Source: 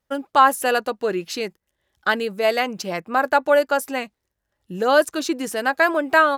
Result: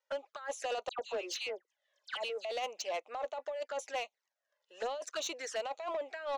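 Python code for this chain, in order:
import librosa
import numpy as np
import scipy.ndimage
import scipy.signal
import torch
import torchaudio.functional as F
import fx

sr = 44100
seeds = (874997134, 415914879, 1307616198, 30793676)

y = scipy.signal.sosfilt(scipy.signal.ellip(3, 1.0, 50, [570.0, 6600.0], 'bandpass', fs=sr, output='sos'), x)
y = fx.over_compress(y, sr, threshold_db=-24.0, ratio=-1.0)
y = fx.env_flanger(y, sr, rest_ms=2.1, full_db=-23.5)
y = fx.dispersion(y, sr, late='lows', ms=100.0, hz=2000.0, at=(0.89, 2.45))
y = 10.0 ** (-23.0 / 20.0) * np.tanh(y / 10.0 ** (-23.0 / 20.0))
y = y * librosa.db_to_amplitude(-7.0)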